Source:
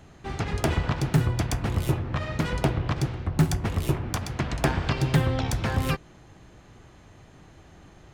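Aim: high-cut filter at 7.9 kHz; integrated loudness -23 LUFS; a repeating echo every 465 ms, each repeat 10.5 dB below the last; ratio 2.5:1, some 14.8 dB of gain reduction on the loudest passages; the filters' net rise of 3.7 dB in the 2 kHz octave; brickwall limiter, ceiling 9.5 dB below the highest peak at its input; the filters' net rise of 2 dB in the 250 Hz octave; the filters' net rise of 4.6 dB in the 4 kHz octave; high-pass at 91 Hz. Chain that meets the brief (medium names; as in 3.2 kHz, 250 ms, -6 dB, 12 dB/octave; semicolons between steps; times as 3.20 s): high-pass 91 Hz; low-pass 7.9 kHz; peaking EQ 250 Hz +3.5 dB; peaking EQ 2 kHz +3.5 dB; peaking EQ 4 kHz +5 dB; compression 2.5:1, threshold -39 dBFS; peak limiter -28 dBFS; feedback delay 465 ms, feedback 30%, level -10.5 dB; trim +17.5 dB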